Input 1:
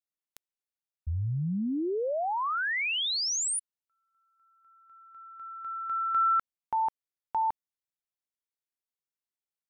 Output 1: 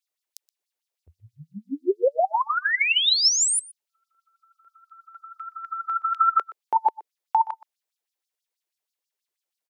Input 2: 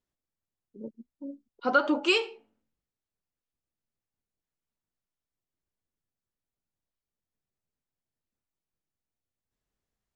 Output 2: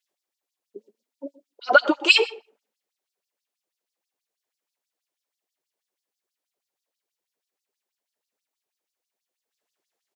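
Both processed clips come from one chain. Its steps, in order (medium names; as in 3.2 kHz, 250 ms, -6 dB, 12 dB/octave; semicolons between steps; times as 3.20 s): peaking EQ 1.3 kHz -4 dB 0.94 oct; LFO high-pass sine 6.2 Hz 390–5200 Hz; echo from a far wall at 21 m, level -19 dB; trim +7 dB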